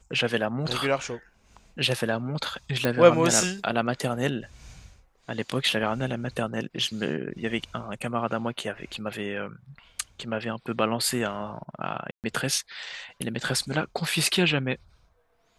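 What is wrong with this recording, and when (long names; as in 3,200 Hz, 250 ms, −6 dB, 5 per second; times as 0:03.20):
0:02.85: click
0:12.11–0:12.24: drop-out 128 ms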